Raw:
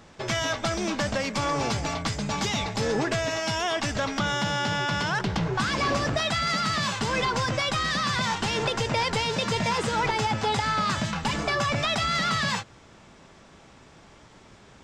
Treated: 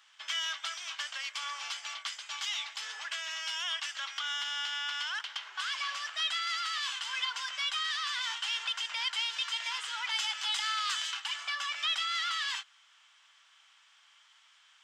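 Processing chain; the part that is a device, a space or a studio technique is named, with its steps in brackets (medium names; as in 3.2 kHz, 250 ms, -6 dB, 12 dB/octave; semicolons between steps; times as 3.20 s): headphones lying on a table (high-pass 1.2 kHz 24 dB/octave; peaking EQ 3.1 kHz +11 dB 0.26 oct); 10.09–11.20 s: treble shelf 3.6 kHz +8.5 dB; trim -7.5 dB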